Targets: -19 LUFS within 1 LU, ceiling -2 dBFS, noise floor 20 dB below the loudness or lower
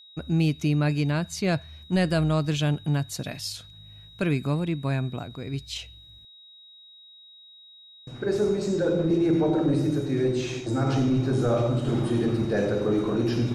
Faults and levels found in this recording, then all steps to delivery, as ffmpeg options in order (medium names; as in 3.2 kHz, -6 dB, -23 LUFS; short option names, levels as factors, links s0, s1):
steady tone 3.8 kHz; tone level -48 dBFS; loudness -25.5 LUFS; peak level -14.5 dBFS; loudness target -19.0 LUFS
-> -af "bandreject=f=3800:w=30"
-af "volume=2.11"